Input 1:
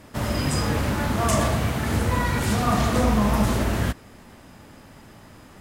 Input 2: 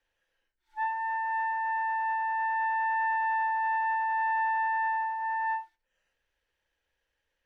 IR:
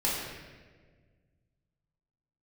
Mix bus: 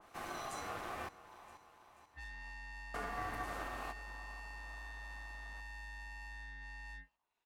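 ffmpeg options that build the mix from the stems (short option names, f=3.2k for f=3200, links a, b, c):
-filter_complex "[0:a]acompressor=mode=upward:threshold=-39dB:ratio=2.5,alimiter=limit=-13dB:level=0:latency=1:release=240,volume=-14dB,asplit=3[a][b][c];[a]atrim=end=1.09,asetpts=PTS-STARTPTS,afade=t=out:st=1.086:d=0.004:c=hsin[d];[b]atrim=start=1.09:end=2.94,asetpts=PTS-STARTPTS,volume=0[e];[c]atrim=start=2.94,asetpts=PTS-STARTPTS,afade=t=in:d=0.004:c=hsin[f];[d][e][f]concat=n=3:v=0:a=1,asplit=2[g][h];[h]volume=-16.5dB[i];[1:a]tremolo=f=220:d=0.621,asoftclip=type=tanh:threshold=-38dB,adelay=1400,volume=-4.5dB[j];[i]aecho=0:1:485|970|1455|1940|2425|2910|3395:1|0.5|0.25|0.125|0.0625|0.0312|0.0156[k];[g][j][k]amix=inputs=3:normalize=0,acrossover=split=140[l][m];[l]acompressor=threshold=-51dB:ratio=6[n];[n][m]amix=inputs=2:normalize=0,aeval=exprs='val(0)*sin(2*PI*940*n/s)':c=same,adynamicequalizer=threshold=0.00141:dfrequency=2000:dqfactor=0.7:tfrequency=2000:tqfactor=0.7:attack=5:release=100:ratio=0.375:range=2:mode=cutabove:tftype=highshelf"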